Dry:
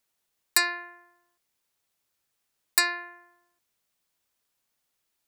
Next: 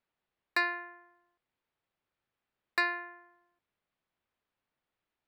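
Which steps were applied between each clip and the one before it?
air absorption 380 m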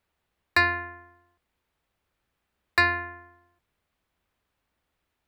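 octaver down 2 oct, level +4 dB; gain +8 dB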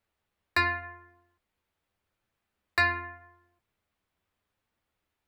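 flange 0.84 Hz, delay 8.8 ms, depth 1.9 ms, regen -31%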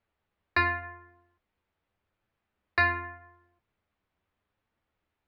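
air absorption 210 m; gain +2 dB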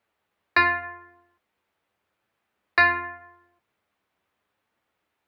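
HPF 320 Hz 6 dB/oct; gain +6.5 dB

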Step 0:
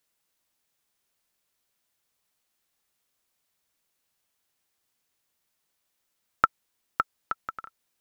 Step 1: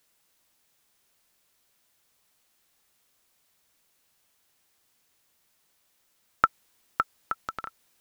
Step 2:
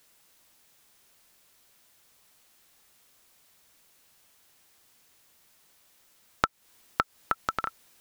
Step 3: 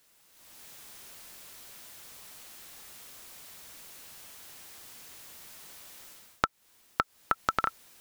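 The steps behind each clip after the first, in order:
transient shaper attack -8 dB, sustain +2 dB; gain +8 dB
compressor 8:1, threshold -29 dBFS, peak gain reduction 14.5 dB; gain +7 dB
AGC gain up to 16.5 dB; gain -3 dB

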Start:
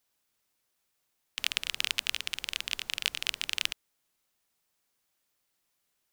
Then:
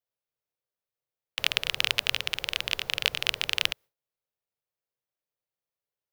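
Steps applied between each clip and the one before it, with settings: gate with hold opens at -51 dBFS; graphic EQ 125/250/500/8000 Hz +10/-7/+11/-8 dB; gain +5.5 dB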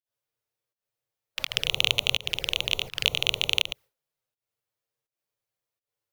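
harmonic-percussive split harmonic +7 dB; pump 83 bpm, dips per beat 1, -22 dB, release 0.186 s; envelope flanger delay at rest 8.9 ms, full sweep at -27.5 dBFS; gain +2.5 dB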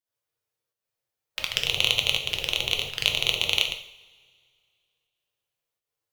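two-slope reverb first 0.57 s, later 2.3 s, from -22 dB, DRR 4 dB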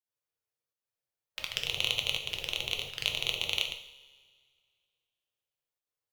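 resonator 69 Hz, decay 1.7 s, harmonics all, mix 50%; gain -2 dB

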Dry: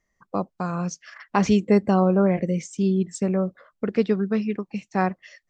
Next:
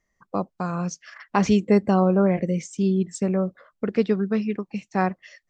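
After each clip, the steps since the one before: nothing audible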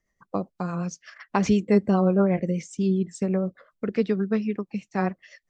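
rotary speaker horn 8 Hz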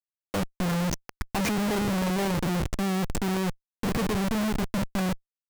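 de-hum 68.75 Hz, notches 10; Schmitt trigger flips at -34 dBFS

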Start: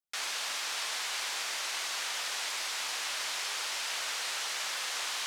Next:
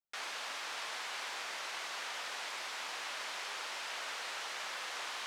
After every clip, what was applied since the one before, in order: bell 15000 Hz -12.5 dB 2.3 oct; gain -1 dB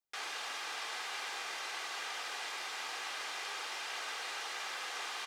comb 2.5 ms, depth 38%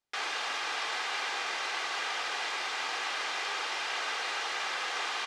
air absorption 63 m; gain +8 dB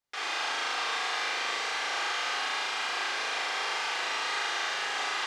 flutter echo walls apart 6.5 m, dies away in 1.4 s; gain -2.5 dB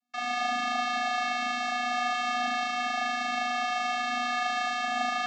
vocoder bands 16, square 244 Hz; gain +3 dB

